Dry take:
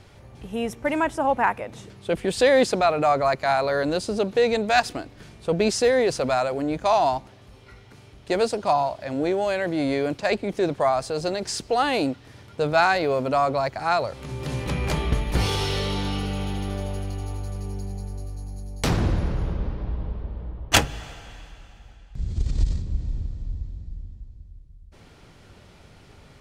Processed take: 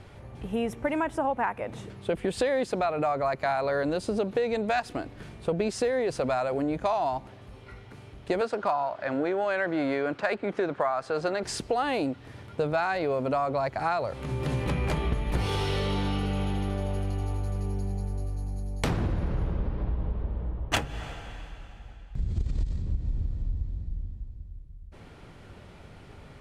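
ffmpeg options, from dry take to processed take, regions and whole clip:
-filter_complex "[0:a]asettb=1/sr,asplit=3[a][b][c];[a]atrim=end=8.414[d];[b]atrim=start=8.41:end=11.44,asetpts=PTS-STARTPTS,afade=t=in:d=0.004:c=qsin,afade=t=out:st=3.026:d=0.004:c=qsin,highpass=f=260:p=1,equalizer=f=1.4k:w=1.8:g=8.5,adynamicsmooth=sensitivity=2:basefreq=6.1k[e];[c]atrim=start=11.436[f];[d][e]acrossfade=d=0.004:c1=hsin:c2=qsin[g];[g][f]acrossfade=d=0.004:c1=qsin:c2=hsin,lowpass=11k,equalizer=f=5.7k:t=o:w=1.5:g=-8,acompressor=threshold=-26dB:ratio=6,volume=2dB"

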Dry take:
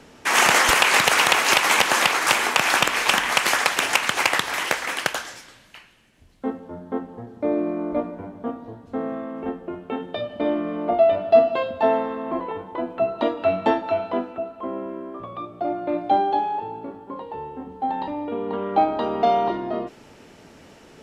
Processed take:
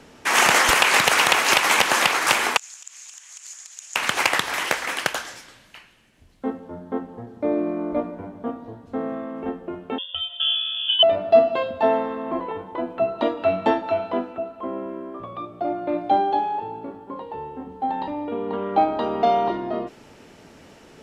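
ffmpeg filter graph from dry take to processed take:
-filter_complex "[0:a]asettb=1/sr,asplit=3[a][b][c];[a]atrim=end=2.574[d];[b]atrim=start=2.57:end=3.96,asetpts=PTS-STARTPTS,afade=t=in:d=0.004:c=qsin,afade=t=out:st=1.386:d=0.004:c=qsin,acompressor=threshold=-20dB:ratio=6:attack=3.2:release=140:knee=1:detection=peak,bandpass=f=6.9k:t=q:w=7.2[e];[c]atrim=start=3.956[f];[d][e]acrossfade=d=0.004:c1=hsin:c2=qsin[g];[g][f]acrossfade=d=0.004:c1=qsin:c2=hsin,asettb=1/sr,asplit=3[h][i][j];[h]atrim=end=9.984[k];[i]atrim=start=9.98:end=11.03,asetpts=PTS-STARTPTS,afade=t=in:d=0.004:c=qsin,afade=t=out:st=1.046:d=0.004:c=qsin,asuperstop=centerf=1500:order=12:qfactor=2.1,lowpass=f=3.1k:t=q:w=0.5098,lowpass=f=3.1k:t=q:w=0.6013,lowpass=f=3.1k:t=q:w=0.9,lowpass=f=3.1k:t=q:w=2.563,afreqshift=-3700[l];[j]atrim=start=11.026[m];[k][l]acrossfade=d=0.004:c1=hsin:c2=qsin[n];[n][m]acrossfade=d=0.004:c1=qsin:c2=hsin"

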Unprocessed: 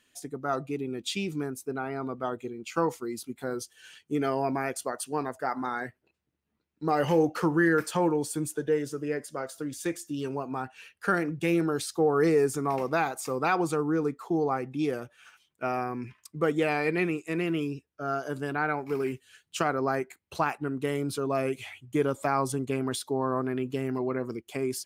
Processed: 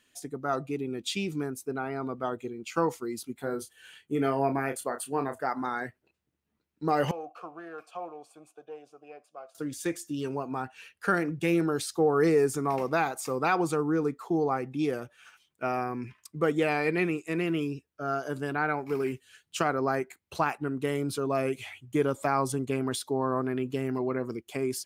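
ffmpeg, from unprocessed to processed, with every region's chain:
-filter_complex "[0:a]asettb=1/sr,asplit=3[a][b][c];[a]atrim=end=3.414[d];[b]atrim=start=3.41:end=5.42,asetpts=PTS-STARTPTS,afade=t=in:d=0.004:c=qsin,afade=t=out:st=2.006:d=0.004:c=qsin,equalizer=f=5.5k:t=o:w=0.64:g=-10,asplit=2[e][f];[f]adelay=29,volume=-8dB[g];[e][g]amix=inputs=2:normalize=0,atrim=end_sample=88641[h];[c]atrim=start=5.416[i];[d][h]acrossfade=d=0.004:c1=hsin:c2=qsin[j];[j][i]acrossfade=d=0.004:c1=qsin:c2=hsin,asettb=1/sr,asplit=3[k][l][m];[k]atrim=end=7.114[n];[l]atrim=start=7.11:end=9.55,asetpts=PTS-STARTPTS,afade=t=in:d=0.004:c=qsin,afade=t=out:st=2.436:d=0.004:c=qsin,aeval=exprs='if(lt(val(0),0),0.708*val(0),val(0))':c=same,asplit=3[o][p][q];[o]bandpass=f=730:t=q:w=8,volume=0dB[r];[p]bandpass=f=1.09k:t=q:w=8,volume=-6dB[s];[q]bandpass=f=2.44k:t=q:w=8,volume=-9dB[t];[r][s][t]amix=inputs=3:normalize=0,aemphasis=mode=production:type=cd[u];[m]atrim=start=9.546[v];[n][u]acrossfade=d=0.004:c1=hsin:c2=qsin[w];[w][v]acrossfade=d=0.004:c1=qsin:c2=hsin"

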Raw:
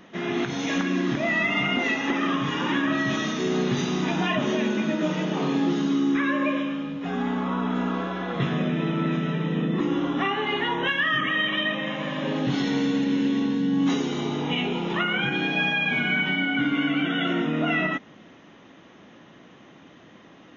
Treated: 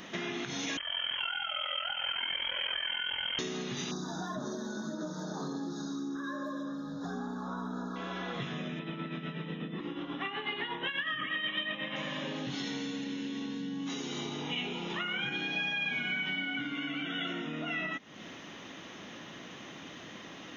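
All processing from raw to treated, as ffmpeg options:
-filter_complex "[0:a]asettb=1/sr,asplit=3[a][b][c];[a]atrim=end=0.774[d];[b]atrim=start=0.77:end=3.39,asetpts=PTS-STARTPTS,afade=t=in:d=0.004:c=qsin,afade=t=out:st=2.616:d=0.004:c=qsin,aeval=exprs='val(0)*sin(2*PI*21*n/s)':c=same,acrossover=split=580|1600[e][f][g];[e]acompressor=threshold=-36dB:ratio=4[h];[f]acompressor=threshold=-46dB:ratio=4[i];[g]acompressor=threshold=-34dB:ratio=4[j];[h][i][j]amix=inputs=3:normalize=0,lowpass=f=2.9k:t=q:w=0.5098,lowpass=f=2.9k:t=q:w=0.6013,lowpass=f=2.9k:t=q:w=0.9,lowpass=f=2.9k:t=q:w=2.563,afreqshift=-3400[k];[c]atrim=start=3.386[l];[d][k]acrossfade=d=0.004:c1=hsin:c2=qsin[m];[m][l]acrossfade=d=0.004:c1=qsin:c2=hsin,asettb=1/sr,asplit=3[n][o][p];[n]atrim=end=3.914[q];[o]atrim=start=3.91:end=7.96,asetpts=PTS-STARTPTS,afade=t=in:d=0.004:c=qsin,afade=t=out:st=4.046:d=0.004:c=qsin,aphaser=in_gain=1:out_gain=1:delay=1.4:decay=0.24:speed=1.8:type=sinusoidal,asuperstop=centerf=2500:order=12:qfactor=1.2[r];[p]atrim=start=7.956[s];[q][r]acrossfade=d=0.004:c1=hsin:c2=qsin[t];[t][s]acrossfade=d=0.004:c1=qsin:c2=hsin,asettb=1/sr,asplit=3[u][v][w];[u]atrim=end=8.794[x];[v]atrim=start=8.79:end=11.96,asetpts=PTS-STARTPTS,afade=t=in:d=0.004:c=qsin,afade=t=out:st=3.166:d=0.004:c=qsin,lowpass=f=4k:w=0.5412,lowpass=f=4k:w=1.3066,tremolo=f=8.2:d=0.58[y];[w]atrim=start=11.956[z];[x][y]acrossfade=d=0.004:c1=hsin:c2=qsin[aa];[aa][z]acrossfade=d=0.004:c1=qsin:c2=hsin,acompressor=threshold=-38dB:ratio=6,highshelf=f=2.4k:g=12,volume=1dB"

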